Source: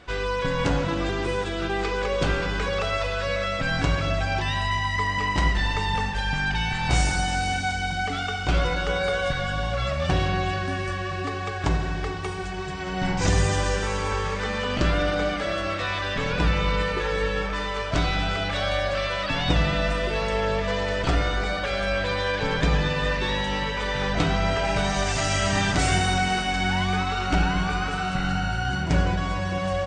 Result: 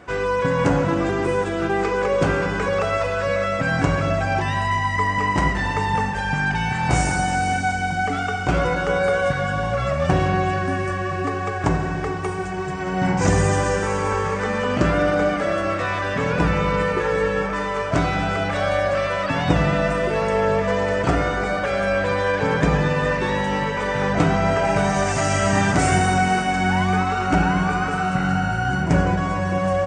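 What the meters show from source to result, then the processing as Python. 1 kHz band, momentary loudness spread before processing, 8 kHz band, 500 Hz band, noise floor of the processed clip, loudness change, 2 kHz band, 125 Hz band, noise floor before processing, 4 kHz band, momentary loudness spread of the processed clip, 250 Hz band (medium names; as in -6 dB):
+5.5 dB, 5 LU, +2.0 dB, +6.0 dB, -25 dBFS, +4.0 dB, +3.0 dB, +3.5 dB, -29 dBFS, -4.0 dB, 4 LU, +6.0 dB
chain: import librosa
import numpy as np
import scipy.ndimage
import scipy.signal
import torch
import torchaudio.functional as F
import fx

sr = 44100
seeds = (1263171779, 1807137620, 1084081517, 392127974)

y = scipy.signal.sosfilt(scipy.signal.butter(2, 96.0, 'highpass', fs=sr, output='sos'), x)
y = fx.peak_eq(y, sr, hz=3800.0, db=-13.0, octaves=1.2)
y = F.gain(torch.from_numpy(y), 6.5).numpy()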